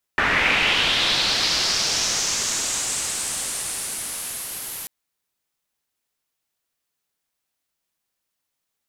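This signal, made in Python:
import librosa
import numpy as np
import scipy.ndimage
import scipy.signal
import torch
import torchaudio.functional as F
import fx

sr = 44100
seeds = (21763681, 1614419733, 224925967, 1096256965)

y = fx.riser_noise(sr, seeds[0], length_s=4.69, colour='white', kind='lowpass', start_hz=1700.0, end_hz=12000.0, q=2.9, swell_db=-20.5, law='linear')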